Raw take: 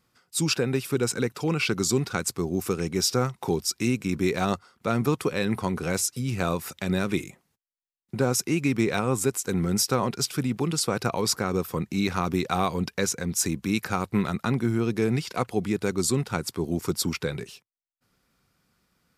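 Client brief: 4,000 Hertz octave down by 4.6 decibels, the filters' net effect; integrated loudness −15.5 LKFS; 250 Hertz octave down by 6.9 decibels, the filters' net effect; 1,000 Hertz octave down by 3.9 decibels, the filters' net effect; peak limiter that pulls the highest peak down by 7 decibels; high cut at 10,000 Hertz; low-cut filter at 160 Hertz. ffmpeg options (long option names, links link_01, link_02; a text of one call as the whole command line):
ffmpeg -i in.wav -af "highpass=160,lowpass=10000,equalizer=frequency=250:width_type=o:gain=-8,equalizer=frequency=1000:width_type=o:gain=-4.5,equalizer=frequency=4000:width_type=o:gain=-6,volume=17.5dB,alimiter=limit=-3dB:level=0:latency=1" out.wav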